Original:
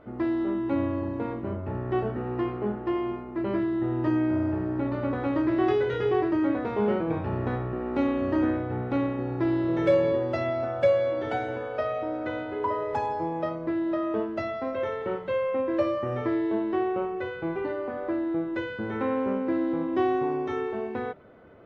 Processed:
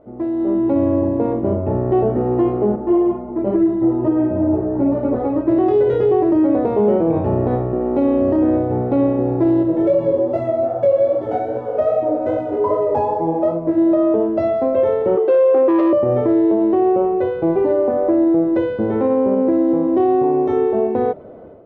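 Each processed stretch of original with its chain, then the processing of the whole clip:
2.76–5.48 s: treble shelf 2.5 kHz -8.5 dB + doubling 37 ms -14 dB + three-phase chorus
9.63–13.78 s: median filter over 9 samples + distance through air 51 m + chorus 2.5 Hz, delay 17 ms, depth 4.4 ms
15.17–15.93 s: resonant high-pass 370 Hz, resonance Q 2.2 + comb 2.6 ms, depth 74% + transformer saturation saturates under 1.1 kHz
whole clip: FFT filter 130 Hz 0 dB, 640 Hz +6 dB, 1.5 kHz -11 dB; level rider gain up to 11.5 dB; peak limiter -8 dBFS

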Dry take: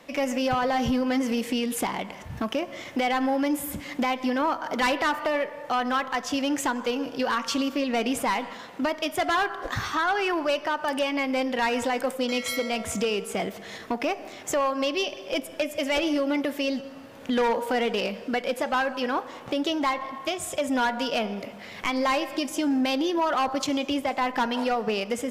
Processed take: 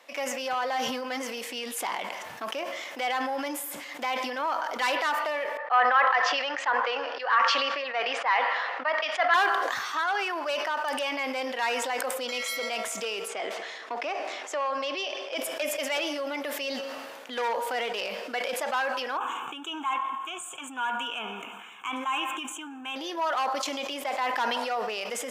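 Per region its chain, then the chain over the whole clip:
5.57–9.34 s: cabinet simulation 470–4200 Hz, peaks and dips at 520 Hz +4 dB, 770 Hz +4 dB, 1.2 kHz +6 dB, 1.8 kHz +8 dB, 3.6 kHz -5 dB + three bands expanded up and down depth 100%
13.28–15.38 s: high-pass 240 Hz 24 dB/octave + distance through air 74 m
19.17–22.96 s: Butterworth band-stop 4.9 kHz, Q 1.2 + static phaser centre 2.9 kHz, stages 8
whole clip: high-pass 610 Hz 12 dB/octave; decay stretcher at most 27 dB/s; trim -2.5 dB

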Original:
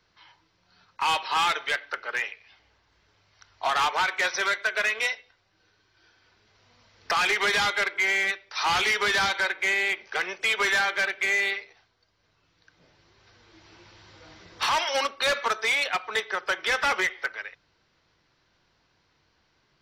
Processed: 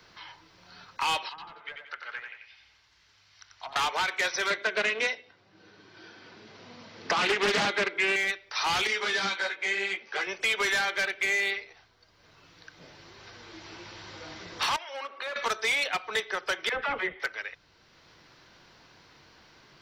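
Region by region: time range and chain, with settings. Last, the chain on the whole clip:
1.29–3.76 s: low-pass that closes with the level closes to 490 Hz, closed at -22 dBFS + amplifier tone stack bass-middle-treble 5-5-5 + thinning echo 90 ms, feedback 35%, high-pass 260 Hz, level -5 dB
4.50–8.16 s: band-pass 140–5900 Hz + peaking EQ 210 Hz +10.5 dB 2.7 oct + loudspeaker Doppler distortion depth 0.52 ms
8.87–10.27 s: band-pass 180–6400 Hz + doubling 21 ms -8.5 dB + three-phase chorus
14.76–15.36 s: tone controls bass -15 dB, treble -15 dB + compression 2.5:1, threshold -42 dBFS
16.69–17.20 s: distance through air 460 m + phase dispersion lows, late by 55 ms, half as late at 590 Hz
whole clip: dynamic bell 1.2 kHz, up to -4 dB, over -36 dBFS, Q 0.72; three bands compressed up and down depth 40%

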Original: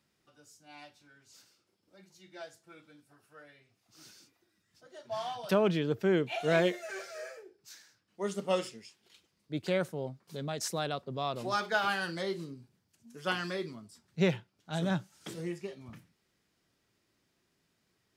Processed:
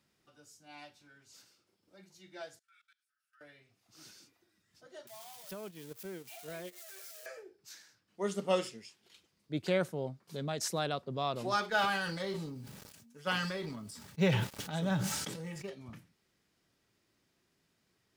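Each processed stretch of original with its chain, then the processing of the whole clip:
2.59–3.41 s: brick-wall FIR high-pass 1.2 kHz + level held to a coarse grid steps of 22 dB
5.07–7.26 s: zero-crossing glitches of -22.5 dBFS + gate -27 dBFS, range -17 dB + compression 5:1, threshold -42 dBFS
11.70–15.70 s: companding laws mixed up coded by A + comb of notches 350 Hz + decay stretcher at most 33 dB/s
whole clip: none

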